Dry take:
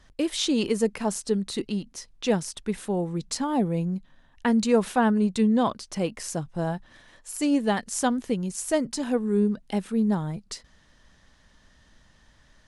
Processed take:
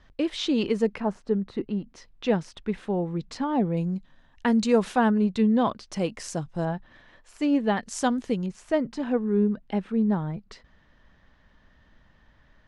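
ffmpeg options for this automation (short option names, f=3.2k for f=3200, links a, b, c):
-af "asetnsamples=n=441:p=0,asendcmd='1 lowpass f 1600;1.88 lowpass f 3100;3.77 lowpass f 6900;5.09 lowpass f 3800;5.91 lowpass f 7200;6.65 lowpass f 3100;7.83 lowpass f 6500;8.46 lowpass f 2600',lowpass=3.7k"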